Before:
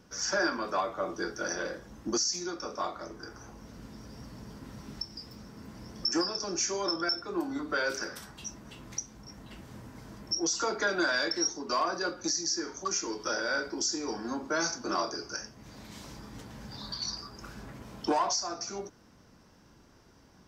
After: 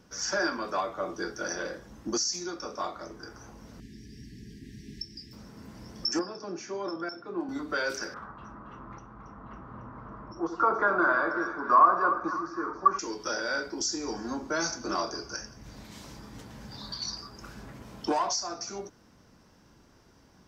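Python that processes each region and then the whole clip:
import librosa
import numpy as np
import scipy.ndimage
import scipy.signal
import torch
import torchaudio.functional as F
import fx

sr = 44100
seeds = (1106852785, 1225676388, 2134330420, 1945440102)

y = fx.chain(x, sr, fx.brickwall_bandstop(low_hz=440.0, high_hz=1600.0),
    fx.high_shelf(hz=11000.0, db=-8.5), at=(3.8, 5.33))
y = fx.chain(y, sr, fx.highpass(hz=120.0, slope=24),
    fx.spacing_loss(db_at_10k=27), at=(6.19, 7.49))
y = fx.chain(y, sr, fx.lowpass_res(hz=1200.0, q=5.0),
    fx.echo_split(split_hz=1000.0, low_ms=84, high_ms=276, feedback_pct=52, wet_db=-9.0), at=(8.14, 12.99))
y = fx.chain(y, sr, fx.low_shelf(hz=73.0, db=11.5),
    fx.echo_feedback(ms=172, feedback_pct=44, wet_db=-21), at=(13.8, 15.83))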